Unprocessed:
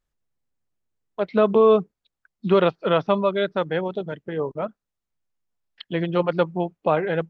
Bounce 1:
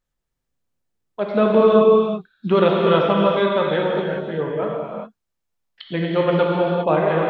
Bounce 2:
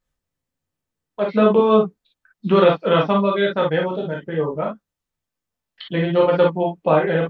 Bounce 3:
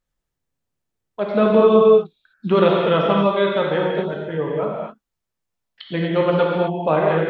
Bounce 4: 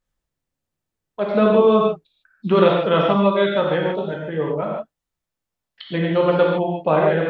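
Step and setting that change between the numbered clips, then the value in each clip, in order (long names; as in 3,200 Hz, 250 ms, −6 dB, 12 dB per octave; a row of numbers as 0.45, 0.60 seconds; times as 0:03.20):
reverb whose tail is shaped and stops, gate: 430, 80, 280, 180 milliseconds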